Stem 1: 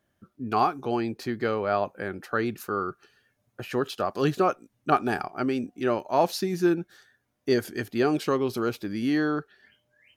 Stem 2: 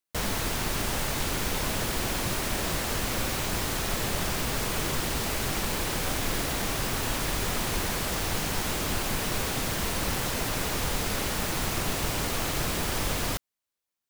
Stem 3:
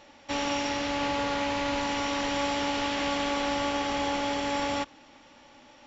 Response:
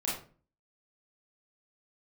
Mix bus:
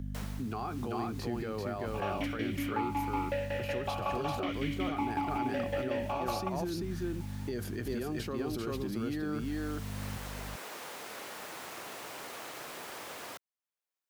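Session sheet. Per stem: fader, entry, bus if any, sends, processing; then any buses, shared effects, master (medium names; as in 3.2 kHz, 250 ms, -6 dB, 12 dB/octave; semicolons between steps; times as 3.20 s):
-13.5 dB, 0.00 s, bus A, no send, echo send -6 dB, bass shelf 320 Hz +6 dB; hum 50 Hz, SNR 11 dB; level flattener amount 50%
-15.5 dB, 0.00 s, bus A, no send, no echo send, high-pass 420 Hz 12 dB/octave; auto duck -12 dB, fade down 0.25 s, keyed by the first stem
+1.5 dB, 1.65 s, no bus, no send, no echo send, peaking EQ 1 kHz +8.5 dB 2.5 oct; tremolo saw down 5.4 Hz, depth 85%; stepped vowel filter 1.8 Hz
bus A: 0.0 dB, peak limiter -30 dBFS, peak gain reduction 10 dB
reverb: none
echo: delay 389 ms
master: three bands compressed up and down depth 40%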